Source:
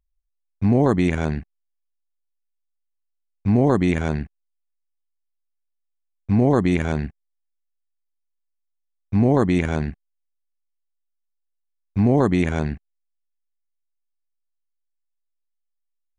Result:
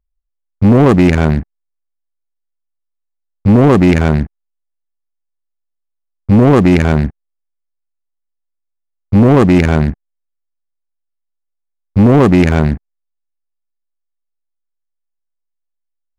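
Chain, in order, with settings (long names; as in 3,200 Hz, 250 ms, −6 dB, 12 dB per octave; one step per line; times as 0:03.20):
adaptive Wiener filter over 15 samples
leveller curve on the samples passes 2
level +6 dB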